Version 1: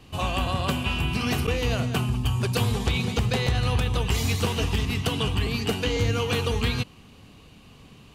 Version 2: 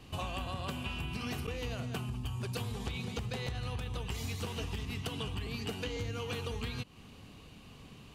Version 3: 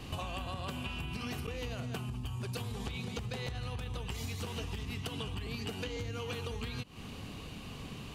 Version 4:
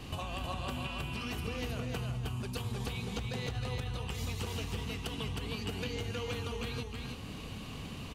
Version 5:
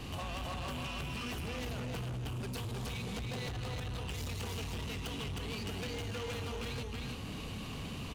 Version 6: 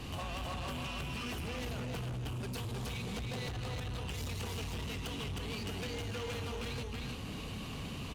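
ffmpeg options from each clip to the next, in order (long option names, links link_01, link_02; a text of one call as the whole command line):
ffmpeg -i in.wav -af "acompressor=threshold=-32dB:ratio=6,volume=-3dB" out.wav
ffmpeg -i in.wav -af "acompressor=threshold=-44dB:ratio=6,volume=8dB" out.wav
ffmpeg -i in.wav -af "aecho=1:1:314:0.668" out.wav
ffmpeg -i in.wav -af "asoftclip=type=hard:threshold=-38.5dB,volume=2dB" out.wav
ffmpeg -i in.wav -ar 48000 -c:a libopus -b:a 64k out.opus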